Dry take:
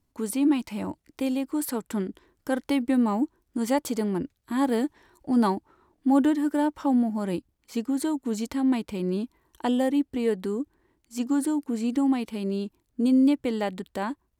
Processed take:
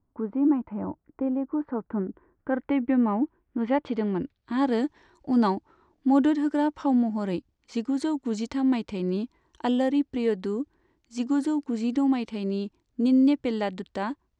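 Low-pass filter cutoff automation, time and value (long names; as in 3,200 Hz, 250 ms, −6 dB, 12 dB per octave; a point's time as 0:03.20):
low-pass filter 24 dB per octave
0:02.08 1,400 Hz
0:02.84 2,500 Hz
0:03.58 2,500 Hz
0:04.81 6,600 Hz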